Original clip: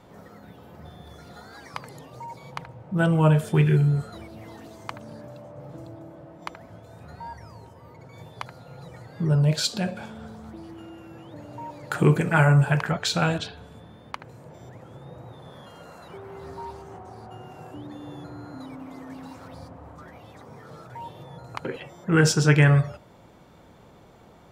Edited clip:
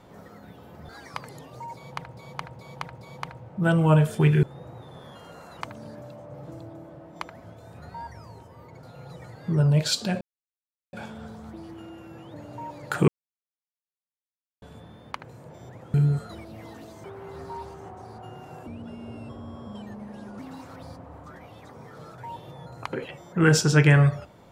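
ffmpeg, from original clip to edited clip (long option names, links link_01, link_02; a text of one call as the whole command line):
ffmpeg -i in.wav -filter_complex "[0:a]asplit=15[link_01][link_02][link_03][link_04][link_05][link_06][link_07][link_08][link_09][link_10][link_11][link_12][link_13][link_14][link_15];[link_01]atrim=end=0.892[link_16];[link_02]atrim=start=1.488:end=2.772[link_17];[link_03]atrim=start=2.348:end=2.772[link_18];[link_04]atrim=start=2.348:end=2.772[link_19];[link_05]atrim=start=2.348:end=3.772[link_20];[link_06]atrim=start=14.938:end=16.122[link_21];[link_07]atrim=start=4.868:end=8.092[link_22];[link_08]atrim=start=8.548:end=9.93,asetpts=PTS-STARTPTS,afade=type=out:start_time=1.378:duration=0.004:curve=hsin,apad=pad_dur=0.72[link_23];[link_09]atrim=start=9.93:end=12.08,asetpts=PTS-STARTPTS,afade=type=in:duration=0.004:curve=hsin,afade=type=out:start_time=2.146:duration=0.004:curve=hsin[link_24];[link_10]atrim=start=12.08:end=13.62,asetpts=PTS-STARTPTS,volume=0[link_25];[link_11]atrim=start=13.62:end=14.942,asetpts=PTS-STARTPTS,afade=type=in:duration=0.004:curve=hsin[link_26];[link_12]atrim=start=3.768:end=4.872[link_27];[link_13]atrim=start=16.118:end=17.754[link_28];[link_14]atrim=start=17.75:end=19.11,asetpts=PTS-STARTPTS,asetrate=34839,aresample=44100[link_29];[link_15]atrim=start=19.106[link_30];[link_16][link_17]acrossfade=duration=0.004:curve1=hsin:curve2=hsin[link_31];[link_31][link_18]acrossfade=duration=0.004:curve1=hsin:curve2=hsin[link_32];[link_32][link_19]acrossfade=duration=0.004:curve1=hsin:curve2=hsin[link_33];[link_33][link_20]acrossfade=duration=0.004:curve1=hsin:curve2=hsin[link_34];[link_34][link_21]acrossfade=duration=0.004:curve1=hsin:curve2=hsin[link_35];[link_35][link_22]acrossfade=duration=0.004:curve1=hsin:curve2=hsin[link_36];[link_23][link_24][link_25][link_26]concat=n=4:v=0:a=1[link_37];[link_36][link_37]acrossfade=duration=0.004:curve1=hsin:curve2=hsin[link_38];[link_38][link_27]acrossfade=duration=0.004:curve1=hsin:curve2=hsin[link_39];[link_39][link_28]acrossfade=duration=0.004:curve1=hsin:curve2=hsin[link_40];[link_40][link_29]acrossfade=duration=0.004:curve1=hsin:curve2=hsin[link_41];[link_41][link_30]acrossfade=duration=0.004:curve1=hsin:curve2=hsin" out.wav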